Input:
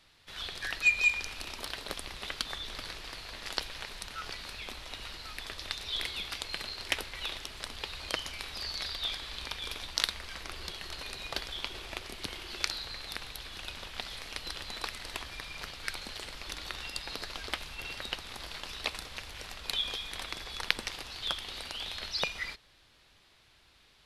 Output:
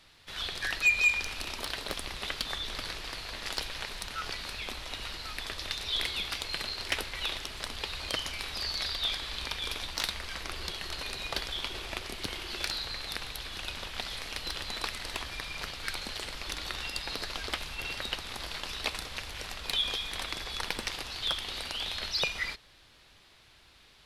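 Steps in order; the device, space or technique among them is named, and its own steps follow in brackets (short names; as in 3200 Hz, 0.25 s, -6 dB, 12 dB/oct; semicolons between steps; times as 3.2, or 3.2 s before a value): saturation between pre-emphasis and de-emphasis (high shelf 4900 Hz +9.5 dB; soft clip -19.5 dBFS, distortion -10 dB; high shelf 4900 Hz -9.5 dB); gain +4 dB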